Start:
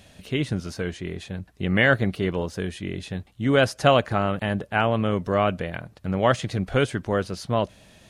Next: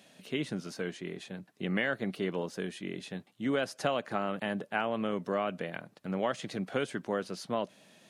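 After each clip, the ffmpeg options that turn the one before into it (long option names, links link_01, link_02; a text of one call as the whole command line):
ffmpeg -i in.wav -af "highpass=frequency=170:width=0.5412,highpass=frequency=170:width=1.3066,acompressor=threshold=-20dB:ratio=6,volume=-6dB" out.wav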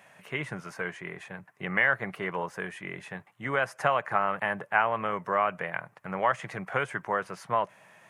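ffmpeg -i in.wav -af "equalizer=frequency=125:width_type=o:width=1:gain=7,equalizer=frequency=250:width_type=o:width=1:gain=-11,equalizer=frequency=1000:width_type=o:width=1:gain=11,equalizer=frequency=2000:width_type=o:width=1:gain=10,equalizer=frequency=4000:width_type=o:width=1:gain=-12" out.wav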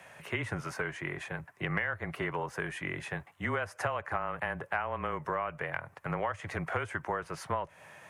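ffmpeg -i in.wav -filter_complex "[0:a]acrossover=split=120[link_01][link_02];[link_02]acompressor=threshold=-34dB:ratio=5[link_03];[link_01][link_03]amix=inputs=2:normalize=0,afreqshift=-24,volume=3.5dB" out.wav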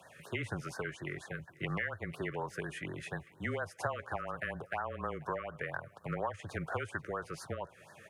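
ffmpeg -i in.wav -af "aecho=1:1:486|972|1458:0.0708|0.0283|0.0113,afftfilt=real='re*(1-between(b*sr/1024,780*pow(2700/780,0.5+0.5*sin(2*PI*4.2*pts/sr))/1.41,780*pow(2700/780,0.5+0.5*sin(2*PI*4.2*pts/sr))*1.41))':imag='im*(1-between(b*sr/1024,780*pow(2700/780,0.5+0.5*sin(2*PI*4.2*pts/sr))/1.41,780*pow(2700/780,0.5+0.5*sin(2*PI*4.2*pts/sr))*1.41))':win_size=1024:overlap=0.75,volume=-2.5dB" out.wav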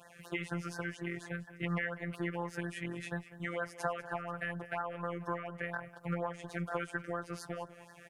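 ffmpeg -i in.wav -af "afftfilt=real='hypot(re,im)*cos(PI*b)':imag='0':win_size=1024:overlap=0.75,aecho=1:1:197:0.15,volume=3.5dB" out.wav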